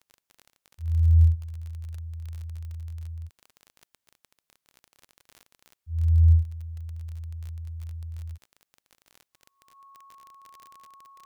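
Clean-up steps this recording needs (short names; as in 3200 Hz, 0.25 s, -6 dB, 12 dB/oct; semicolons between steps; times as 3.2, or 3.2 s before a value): de-click; notch 1100 Hz, Q 30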